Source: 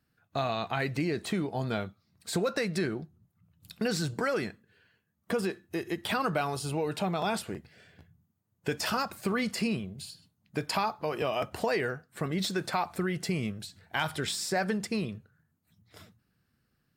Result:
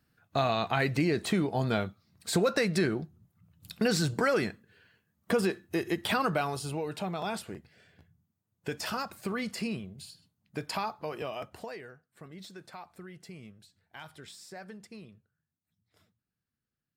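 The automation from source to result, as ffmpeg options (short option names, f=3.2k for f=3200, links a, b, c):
-af "volume=3dB,afade=t=out:st=5.87:d=1:silence=0.446684,afade=t=out:st=11.01:d=0.82:silence=0.251189"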